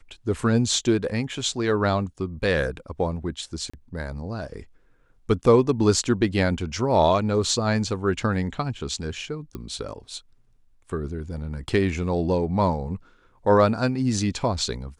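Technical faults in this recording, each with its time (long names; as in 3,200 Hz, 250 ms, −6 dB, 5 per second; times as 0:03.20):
0:03.70–0:03.73: drop-out 35 ms
0:09.55: click −21 dBFS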